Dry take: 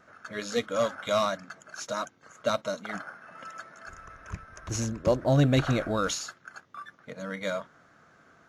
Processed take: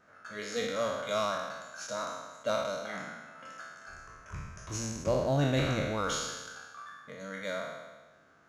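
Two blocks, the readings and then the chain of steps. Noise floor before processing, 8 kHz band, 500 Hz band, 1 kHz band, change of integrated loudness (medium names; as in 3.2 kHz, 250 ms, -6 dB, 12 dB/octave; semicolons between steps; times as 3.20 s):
-60 dBFS, -2.0 dB, -3.5 dB, -2.5 dB, -4.0 dB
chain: spectral sustain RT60 1.29 s; hum notches 60/120/180/240/300/360 Hz; trim -7 dB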